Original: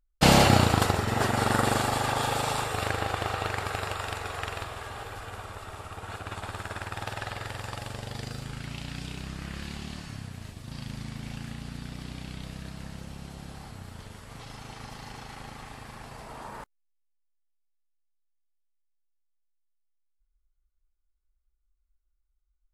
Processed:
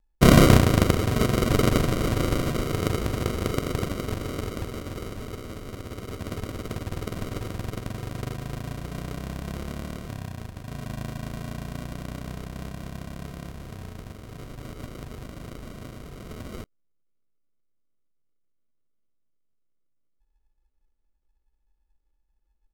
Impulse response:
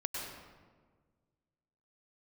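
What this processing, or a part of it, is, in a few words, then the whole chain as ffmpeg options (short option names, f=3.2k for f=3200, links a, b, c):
crushed at another speed: -af "asetrate=55125,aresample=44100,acrusher=samples=41:mix=1:aa=0.000001,asetrate=35280,aresample=44100,volume=4dB"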